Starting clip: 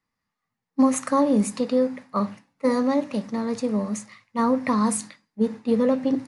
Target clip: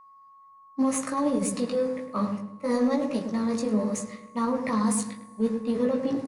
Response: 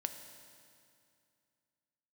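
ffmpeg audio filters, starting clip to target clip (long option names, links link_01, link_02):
-filter_complex "[0:a]highshelf=frequency=6900:gain=6,alimiter=limit=-17.5dB:level=0:latency=1:release=11,flanger=delay=16.5:depth=2.4:speed=0.69,aeval=exprs='0.133*(cos(1*acos(clip(val(0)/0.133,-1,1)))-cos(1*PI/2))+0.00237*(cos(7*acos(clip(val(0)/0.133,-1,1)))-cos(7*PI/2))':channel_layout=same,asplit=2[link_01][link_02];[link_02]adelay=105,lowpass=frequency=860:poles=1,volume=-5dB,asplit=2[link_03][link_04];[link_04]adelay=105,lowpass=frequency=860:poles=1,volume=0.49,asplit=2[link_05][link_06];[link_06]adelay=105,lowpass=frequency=860:poles=1,volume=0.49,asplit=2[link_07][link_08];[link_08]adelay=105,lowpass=frequency=860:poles=1,volume=0.49,asplit=2[link_09][link_10];[link_10]adelay=105,lowpass=frequency=860:poles=1,volume=0.49,asplit=2[link_11][link_12];[link_12]adelay=105,lowpass=frequency=860:poles=1,volume=0.49[link_13];[link_01][link_03][link_05][link_07][link_09][link_11][link_13]amix=inputs=7:normalize=0,asplit=2[link_14][link_15];[1:a]atrim=start_sample=2205[link_16];[link_15][link_16]afir=irnorm=-1:irlink=0,volume=-12.5dB[link_17];[link_14][link_17]amix=inputs=2:normalize=0,aeval=exprs='val(0)+0.00316*sin(2*PI*1100*n/s)':channel_layout=same"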